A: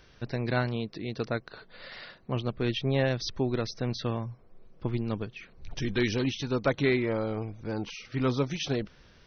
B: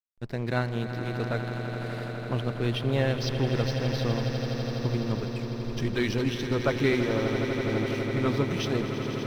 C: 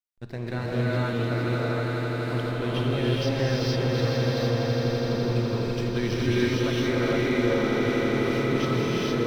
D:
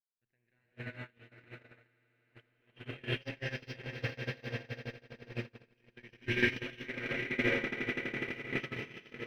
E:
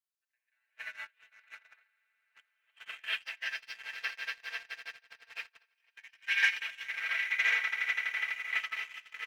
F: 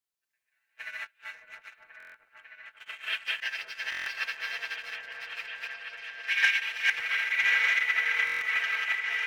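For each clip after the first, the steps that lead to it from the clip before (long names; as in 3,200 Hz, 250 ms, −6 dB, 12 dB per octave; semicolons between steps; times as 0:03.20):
slack as between gear wheels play −40.5 dBFS; on a send: echo that builds up and dies away 83 ms, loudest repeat 8, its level −12 dB
brickwall limiter −20.5 dBFS, peak gain reduction 9 dB; reverb whose tail is shaped and stops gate 490 ms rising, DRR −6.5 dB; level −2.5 dB
noise gate −21 dBFS, range −43 dB; flat-topped bell 2,200 Hz +14 dB 1.1 octaves; level −6 dB
high-pass filter 1,000 Hz 24 dB per octave; comb filter 4.5 ms, depth 67%; leveller curve on the samples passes 1
delay that plays each chunk backwards 230 ms, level 0 dB; echo whose low-pass opens from repeat to repeat 549 ms, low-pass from 750 Hz, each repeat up 1 octave, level −3 dB; buffer that repeats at 0:01.98/0:03.90/0:08.25, samples 1,024, times 6; level +2 dB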